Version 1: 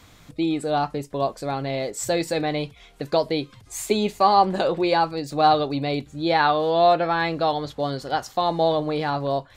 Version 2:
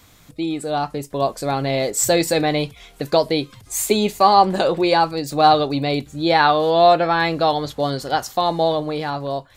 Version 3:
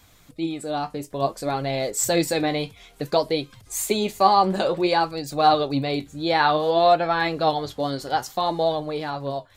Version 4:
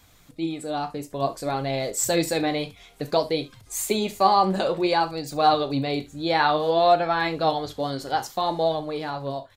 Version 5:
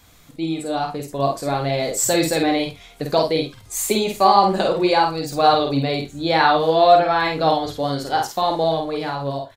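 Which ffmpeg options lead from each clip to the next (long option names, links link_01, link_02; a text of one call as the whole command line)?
ffmpeg -i in.wav -af "highshelf=frequency=8500:gain=11,dynaudnorm=framelen=200:gausssize=13:maxgain=11.5dB,volume=-1dB" out.wav
ffmpeg -i in.wav -af "flanger=delay=1.2:depth=9.7:regen=61:speed=0.57:shape=sinusoidal" out.wav
ffmpeg -i in.wav -af "aecho=1:1:37|69:0.188|0.126,volume=-1.5dB" out.wav
ffmpeg -i in.wav -filter_complex "[0:a]asplit=2[link_01][link_02];[link_02]adelay=50,volume=-4dB[link_03];[link_01][link_03]amix=inputs=2:normalize=0,volume=3.5dB" out.wav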